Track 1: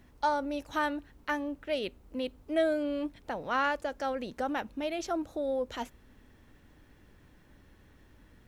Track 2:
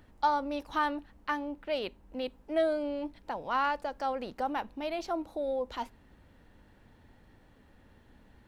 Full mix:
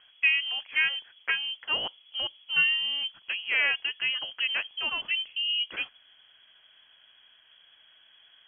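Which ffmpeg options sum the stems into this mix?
-filter_complex "[0:a]volume=1dB[a];[1:a]highpass=1k,volume=-1,volume=-1dB[b];[a][b]amix=inputs=2:normalize=0,highpass=46,lowpass=f=2.9k:t=q:w=0.5098,lowpass=f=2.9k:t=q:w=0.6013,lowpass=f=2.9k:t=q:w=0.9,lowpass=f=2.9k:t=q:w=2.563,afreqshift=-3400"

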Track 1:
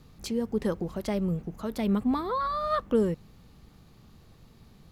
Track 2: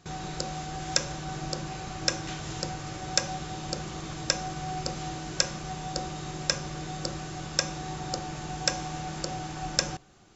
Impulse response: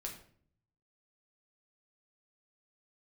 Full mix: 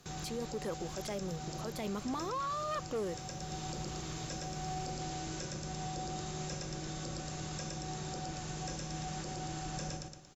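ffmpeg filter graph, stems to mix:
-filter_complex "[0:a]bass=f=250:g=-13,treble=f=4k:g=2,volume=24.5dB,asoftclip=hard,volume=-24.5dB,volume=-4dB,asplit=2[a][b];[1:a]aemphasis=mode=production:type=cd,acrossover=split=490[c][d];[d]acompressor=threshold=-44dB:ratio=1.5[e];[c][e]amix=inputs=2:normalize=0,volume=-5dB,asplit=2[f][g];[g]volume=-3.5dB[h];[b]apad=whole_len=456468[i];[f][i]sidechaincompress=threshold=-44dB:ratio=8:attack=16:release=522[j];[h]aecho=0:1:115|230|345|460|575:1|0.38|0.144|0.0549|0.0209[k];[a][j][k]amix=inputs=3:normalize=0,alimiter=level_in=6dB:limit=-24dB:level=0:latency=1:release=10,volume=-6dB"

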